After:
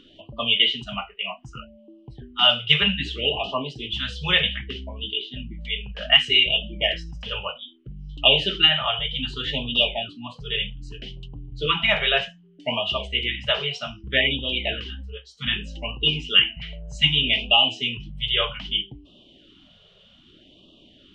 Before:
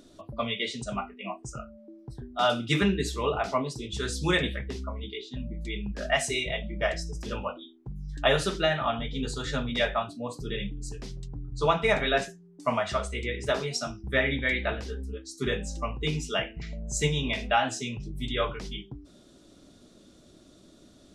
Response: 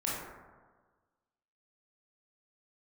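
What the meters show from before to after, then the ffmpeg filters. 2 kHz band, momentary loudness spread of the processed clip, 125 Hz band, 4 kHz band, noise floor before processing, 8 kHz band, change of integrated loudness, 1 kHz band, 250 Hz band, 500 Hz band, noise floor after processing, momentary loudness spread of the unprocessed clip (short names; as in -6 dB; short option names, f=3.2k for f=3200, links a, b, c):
+7.0 dB, 18 LU, 0.0 dB, +15.0 dB, -56 dBFS, under -10 dB, +8.0 dB, -0.5 dB, -2.0 dB, -1.0 dB, -54 dBFS, 14 LU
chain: -af "lowpass=f=3k:t=q:w=15,afftfilt=real='re*(1-between(b*sr/1024,260*pow(1800/260,0.5+0.5*sin(2*PI*0.64*pts/sr))/1.41,260*pow(1800/260,0.5+0.5*sin(2*PI*0.64*pts/sr))*1.41))':imag='im*(1-between(b*sr/1024,260*pow(1800/260,0.5+0.5*sin(2*PI*0.64*pts/sr))/1.41,260*pow(1800/260,0.5+0.5*sin(2*PI*0.64*pts/sr))*1.41))':win_size=1024:overlap=0.75"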